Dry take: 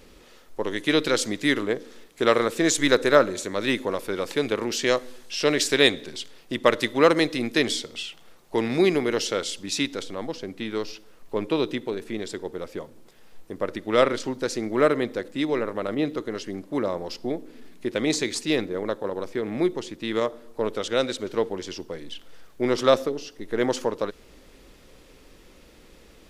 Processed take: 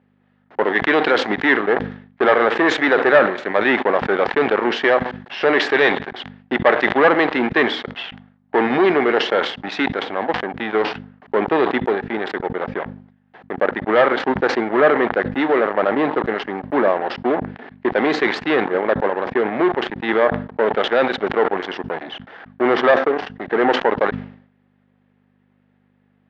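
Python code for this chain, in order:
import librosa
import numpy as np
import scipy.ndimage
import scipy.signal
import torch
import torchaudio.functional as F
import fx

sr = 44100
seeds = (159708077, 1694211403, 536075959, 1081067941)

p1 = fx.transient(x, sr, attack_db=0, sustain_db=-4)
p2 = fx.level_steps(p1, sr, step_db=14)
p3 = p1 + (p2 * 10.0 ** (3.0 / 20.0))
p4 = fx.leveller(p3, sr, passes=5)
p5 = fx.add_hum(p4, sr, base_hz=50, snr_db=29)
p6 = fx.cabinet(p5, sr, low_hz=300.0, low_slope=12, high_hz=2700.0, hz=(310.0, 500.0, 780.0, 1700.0, 2500.0), db=(-4, -4, 7, 6, -4))
p7 = fx.sustainer(p6, sr, db_per_s=100.0)
y = p7 * 10.0 ** (-10.0 / 20.0)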